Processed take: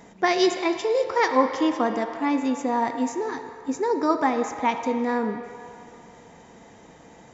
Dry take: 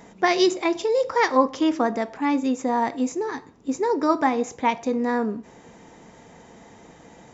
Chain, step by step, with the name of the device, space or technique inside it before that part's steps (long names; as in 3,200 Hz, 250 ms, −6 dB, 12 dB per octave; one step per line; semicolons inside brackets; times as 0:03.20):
filtered reverb send (on a send: high-pass filter 440 Hz 12 dB per octave + low-pass filter 4,500 Hz 12 dB per octave + convolution reverb RT60 2.5 s, pre-delay 55 ms, DRR 7 dB)
on the sum: level −1.5 dB